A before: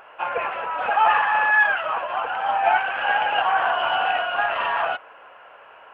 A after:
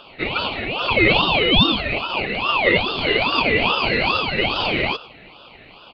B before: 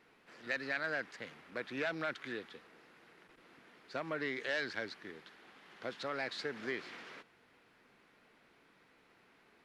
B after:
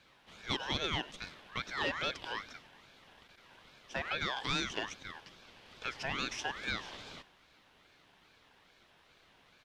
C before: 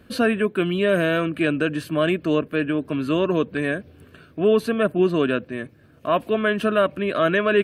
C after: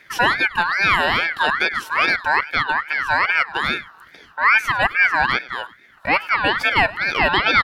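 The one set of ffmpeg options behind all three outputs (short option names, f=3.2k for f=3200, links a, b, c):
-af "aecho=1:1:101:0.112,aeval=exprs='val(0)*sin(2*PI*1600*n/s+1600*0.25/2.4*sin(2*PI*2.4*n/s))':c=same,volume=5dB"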